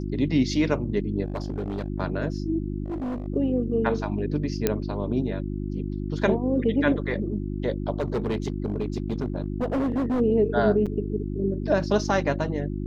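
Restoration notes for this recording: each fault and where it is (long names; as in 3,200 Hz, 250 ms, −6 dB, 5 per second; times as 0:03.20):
mains hum 50 Hz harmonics 7 −30 dBFS
0:01.24–0:01.88: clipping −24.5 dBFS
0:02.84–0:03.28: clipping −27 dBFS
0:04.67: click −7 dBFS
0:08.00–0:10.21: clipping −21.5 dBFS
0:10.86–0:10.87: drop-out 6.2 ms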